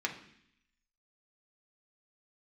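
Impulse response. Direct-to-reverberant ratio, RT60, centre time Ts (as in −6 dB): −0.5 dB, 0.65 s, 15 ms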